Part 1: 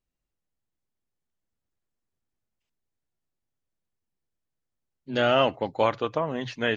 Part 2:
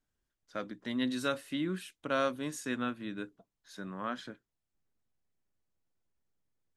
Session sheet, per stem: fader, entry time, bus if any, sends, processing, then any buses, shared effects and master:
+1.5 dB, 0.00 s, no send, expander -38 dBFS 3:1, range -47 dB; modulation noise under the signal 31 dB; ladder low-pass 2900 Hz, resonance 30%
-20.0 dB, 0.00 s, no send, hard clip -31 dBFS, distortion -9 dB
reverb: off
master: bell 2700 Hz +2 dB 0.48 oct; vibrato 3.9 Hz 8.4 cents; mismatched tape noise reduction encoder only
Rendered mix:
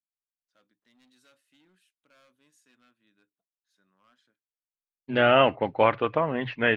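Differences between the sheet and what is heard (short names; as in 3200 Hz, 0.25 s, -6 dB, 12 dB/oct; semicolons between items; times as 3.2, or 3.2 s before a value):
stem 1 +1.5 dB -> +8.5 dB; stem 2 -20.0 dB -> -32.0 dB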